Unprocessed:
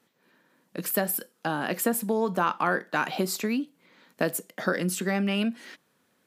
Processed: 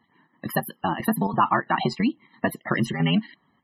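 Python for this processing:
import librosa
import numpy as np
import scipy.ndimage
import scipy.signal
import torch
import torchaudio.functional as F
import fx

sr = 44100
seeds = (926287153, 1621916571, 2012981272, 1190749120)

y = scipy.signal.medfilt(x, 5)
y = y + 0.65 * np.pad(y, (int(1.0 * sr / 1000.0), 0))[:len(y)]
y = fx.stretch_grains(y, sr, factor=0.58, grain_ms=22.0)
y = fx.chopper(y, sr, hz=3.0, depth_pct=60, duty_pct=80)
y = fx.spec_topn(y, sr, count=64)
y = F.gain(torch.from_numpy(y), 5.5).numpy()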